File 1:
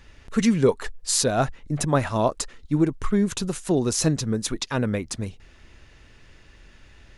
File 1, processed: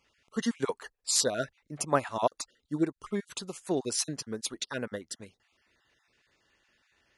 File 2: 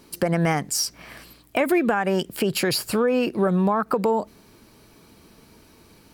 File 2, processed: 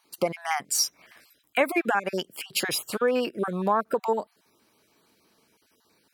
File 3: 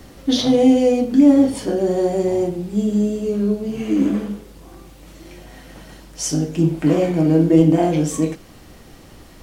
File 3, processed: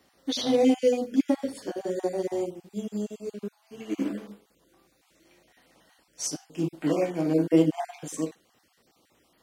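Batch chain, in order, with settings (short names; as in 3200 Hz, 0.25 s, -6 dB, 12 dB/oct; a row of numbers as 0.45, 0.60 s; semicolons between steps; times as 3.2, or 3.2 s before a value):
random spectral dropouts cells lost 22%; HPF 480 Hz 6 dB/oct; upward expander 1.5:1, over -43 dBFS; normalise peaks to -9 dBFS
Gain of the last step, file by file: -0.5, +2.5, -1.0 dB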